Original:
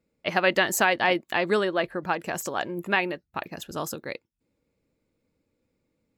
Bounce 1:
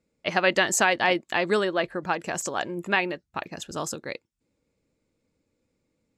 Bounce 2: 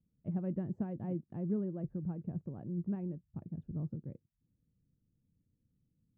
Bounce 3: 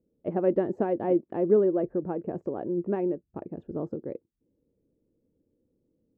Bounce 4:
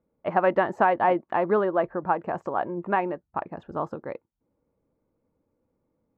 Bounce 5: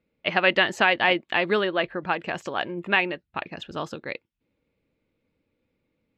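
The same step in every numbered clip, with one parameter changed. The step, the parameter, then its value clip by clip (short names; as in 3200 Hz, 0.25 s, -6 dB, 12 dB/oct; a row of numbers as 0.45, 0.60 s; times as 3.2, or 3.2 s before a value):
synth low-pass, frequency: 7800, 150, 400, 1000, 3100 Hz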